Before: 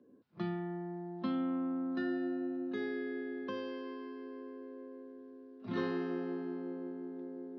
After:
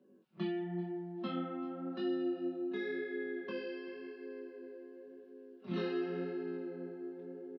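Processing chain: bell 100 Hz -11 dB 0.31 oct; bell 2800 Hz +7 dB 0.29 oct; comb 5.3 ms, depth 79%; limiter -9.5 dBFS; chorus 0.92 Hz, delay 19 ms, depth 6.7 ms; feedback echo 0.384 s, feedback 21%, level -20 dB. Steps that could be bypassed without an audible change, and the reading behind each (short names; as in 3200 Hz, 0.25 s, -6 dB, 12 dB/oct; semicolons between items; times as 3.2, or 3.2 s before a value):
limiter -9.5 dBFS: input peak -21.0 dBFS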